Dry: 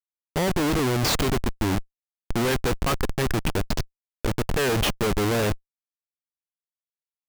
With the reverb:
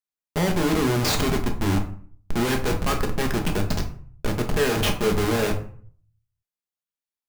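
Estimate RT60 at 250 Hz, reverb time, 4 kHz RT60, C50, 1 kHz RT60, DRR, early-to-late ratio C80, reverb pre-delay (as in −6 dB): 0.65 s, 0.50 s, 0.30 s, 10.0 dB, 0.50 s, 2.5 dB, 14.0 dB, 5 ms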